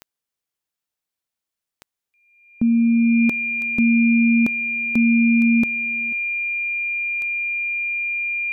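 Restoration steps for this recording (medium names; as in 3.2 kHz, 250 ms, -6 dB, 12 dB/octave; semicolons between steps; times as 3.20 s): de-click; band-stop 2.4 kHz, Q 30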